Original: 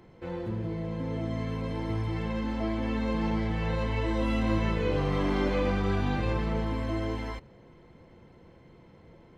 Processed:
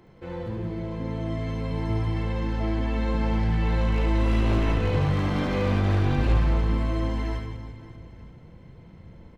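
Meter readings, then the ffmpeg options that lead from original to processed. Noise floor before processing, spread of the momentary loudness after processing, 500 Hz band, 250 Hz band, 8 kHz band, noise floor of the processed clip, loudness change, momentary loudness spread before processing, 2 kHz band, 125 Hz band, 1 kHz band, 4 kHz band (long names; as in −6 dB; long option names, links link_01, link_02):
−55 dBFS, 11 LU, +0.5 dB, +2.0 dB, can't be measured, −48 dBFS, +4.5 dB, 7 LU, +2.0 dB, +6.5 dB, +2.0 dB, +2.5 dB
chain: -filter_complex "[0:a]asubboost=boost=2.5:cutoff=210,aeval=exprs='0.15*(abs(mod(val(0)/0.15+3,4)-2)-1)':channel_layout=same,asplit=2[link_01][link_02];[link_02]aecho=0:1:70|175|332.5|568.8|923.1:0.631|0.398|0.251|0.158|0.1[link_03];[link_01][link_03]amix=inputs=2:normalize=0"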